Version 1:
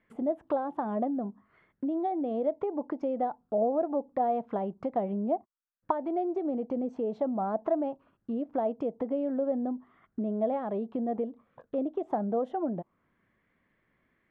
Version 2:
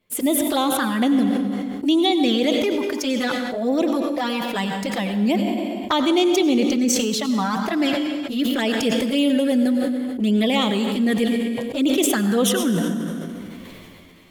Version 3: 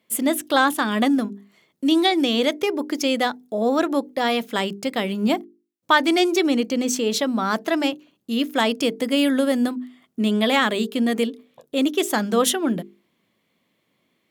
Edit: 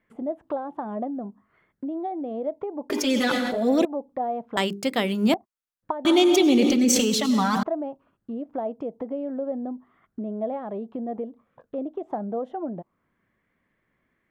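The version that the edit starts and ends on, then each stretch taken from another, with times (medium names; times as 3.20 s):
1
2.90–3.85 s: from 2
4.57–5.34 s: from 3
6.05–7.63 s: from 2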